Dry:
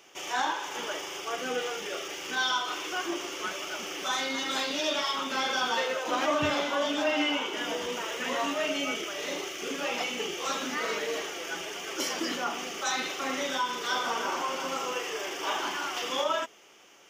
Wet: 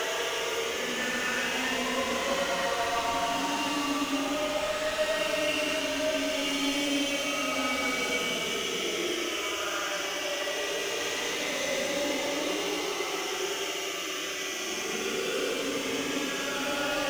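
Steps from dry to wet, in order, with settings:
gain into a clipping stage and back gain 31.5 dB
extreme stretch with random phases 9.8×, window 0.10 s, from 0:08.10
level +5 dB

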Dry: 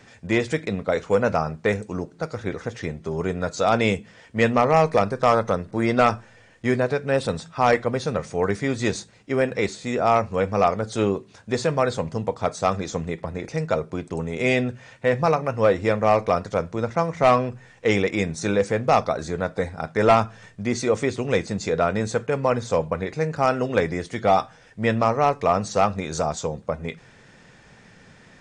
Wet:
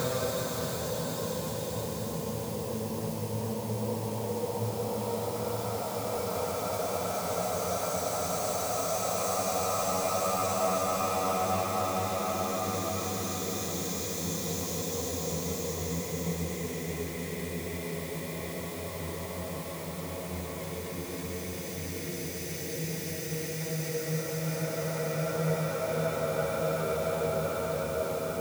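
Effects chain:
spike at every zero crossing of −22.5 dBFS
extreme stretch with random phases 15×, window 0.50 s, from 0:11.95
hum removal 47.92 Hz, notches 32
level −6 dB

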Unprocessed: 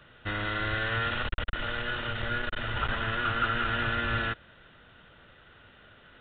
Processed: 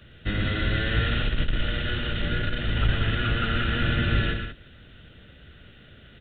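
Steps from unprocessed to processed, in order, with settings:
sub-octave generator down 1 octave, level +3 dB
parametric band 1,000 Hz −14.5 dB 1.2 octaves
on a send: loudspeakers that aren't time-aligned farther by 40 metres −7 dB, 64 metres −10 dB
on the sum: level +5.5 dB

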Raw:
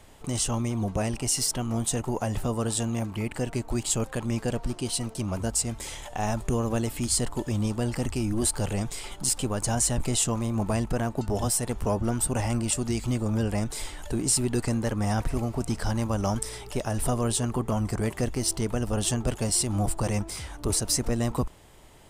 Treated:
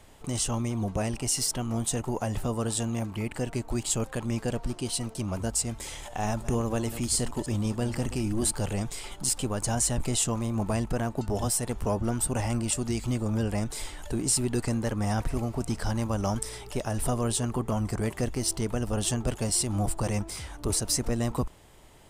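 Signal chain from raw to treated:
0:05.79–0:08.52: delay that plays each chunk backwards 152 ms, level −13 dB
level −1.5 dB

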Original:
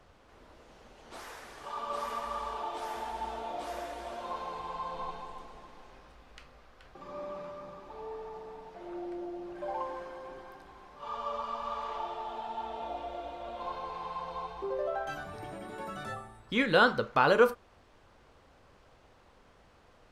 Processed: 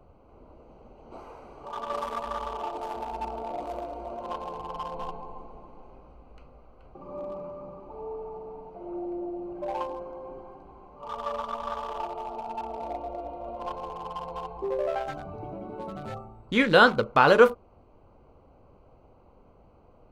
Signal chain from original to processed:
adaptive Wiener filter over 25 samples
level +6 dB

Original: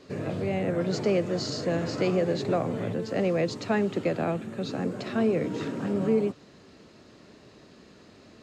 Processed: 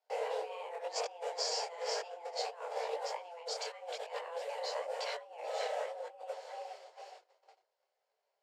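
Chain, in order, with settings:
on a send: feedback echo with a high-pass in the loop 440 ms, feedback 53%, high-pass 280 Hz, level −13.5 dB
on the sum: noise gate −46 dBFS, range −33 dB
compressor whose output falls as the input rises −31 dBFS, ratio −0.5
frequency shifter +340 Hz
dynamic equaliser 970 Hz, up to −7 dB, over −47 dBFS, Q 0.73
micro pitch shift up and down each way 34 cents

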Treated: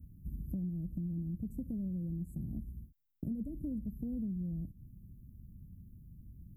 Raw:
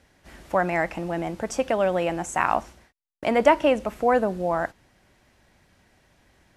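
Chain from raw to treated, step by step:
inverse Chebyshev band-stop filter 940–4,700 Hz, stop band 80 dB
downward compressor 6 to 1, threshold −49 dBFS, peak gain reduction 16.5 dB
level +12.5 dB

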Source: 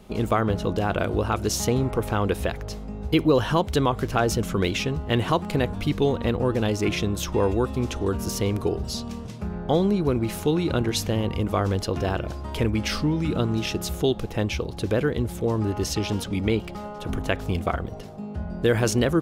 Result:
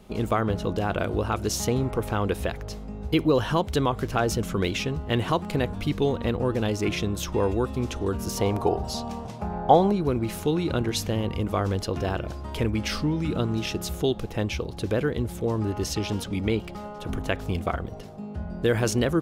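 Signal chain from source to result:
0:08.37–0:09.92: parametric band 790 Hz +14.5 dB 0.85 octaves
level −2 dB

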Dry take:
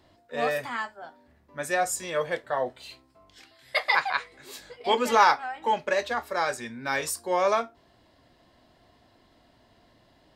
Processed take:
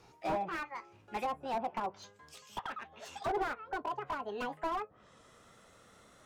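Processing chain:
gliding playback speed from 132% → 199%
treble cut that deepens with the level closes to 630 Hz, closed at −24 dBFS
slew-rate limiting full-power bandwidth 24 Hz

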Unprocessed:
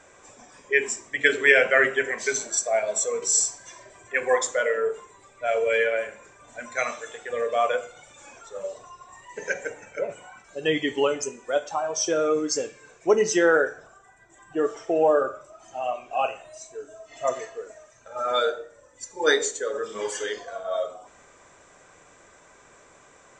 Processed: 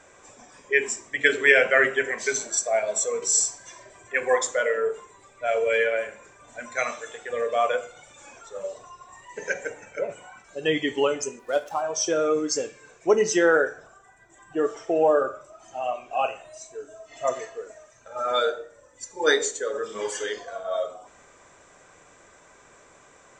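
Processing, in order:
0:11.39–0:11.82: running median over 9 samples

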